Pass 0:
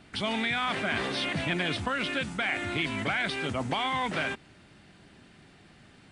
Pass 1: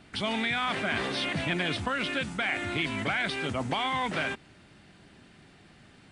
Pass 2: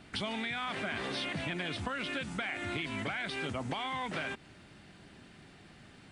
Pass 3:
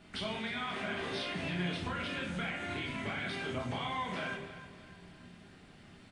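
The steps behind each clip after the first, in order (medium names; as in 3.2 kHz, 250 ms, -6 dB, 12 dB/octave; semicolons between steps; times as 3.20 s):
no audible change
compression, threshold -33 dBFS, peak gain reduction 8.5 dB
feedback delay 308 ms, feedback 44%, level -14 dB; simulated room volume 200 m³, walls mixed, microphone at 1.3 m; trim -6 dB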